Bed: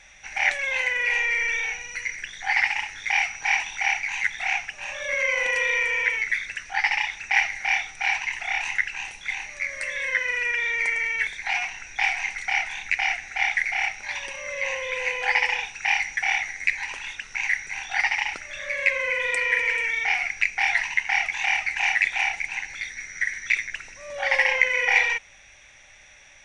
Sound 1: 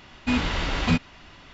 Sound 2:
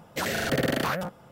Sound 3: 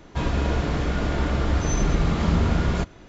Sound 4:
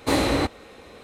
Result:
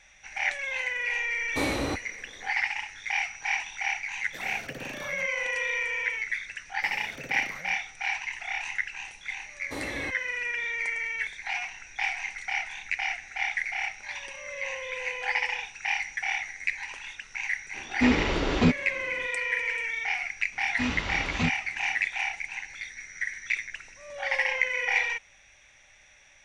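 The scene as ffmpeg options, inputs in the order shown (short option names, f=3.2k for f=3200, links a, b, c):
-filter_complex "[4:a]asplit=2[a][b];[2:a]asplit=2[c][d];[1:a]asplit=2[e][f];[0:a]volume=-6dB[g];[e]equalizer=f=390:t=o:w=1.3:g=12[h];[f]highpass=41[i];[a]atrim=end=1.03,asetpts=PTS-STARTPTS,volume=-7.5dB,afade=t=in:d=0.05,afade=t=out:st=0.98:d=0.05,adelay=1490[j];[c]atrim=end=1.31,asetpts=PTS-STARTPTS,volume=-15.5dB,afade=t=in:d=0.004:c=hsin,afade=t=out:st=1.306:d=0.004:c=hsin,adelay=183897S[k];[d]atrim=end=1.31,asetpts=PTS-STARTPTS,volume=-18dB,afade=t=in:d=0.004:c=hsin,afade=t=out:st=1.306:d=0.004:c=hsin,adelay=293706S[l];[b]atrim=end=1.03,asetpts=PTS-STARTPTS,volume=-15.5dB,afade=t=in:d=0.004:c=hsin,afade=t=out:st=1.026:d=0.004:c=hsin,adelay=9640[m];[h]atrim=end=1.53,asetpts=PTS-STARTPTS,volume=-3.5dB,afade=t=in:d=0.004:c=hsin,afade=t=out:st=1.526:d=0.004:c=hsin,adelay=17740[n];[i]atrim=end=1.53,asetpts=PTS-STARTPTS,volume=-6dB,afade=t=in:d=0.004:c=hsin,afade=t=out:st=1.526:d=0.004:c=hsin,adelay=904932S[o];[g][j][k][l][m][n][o]amix=inputs=7:normalize=0"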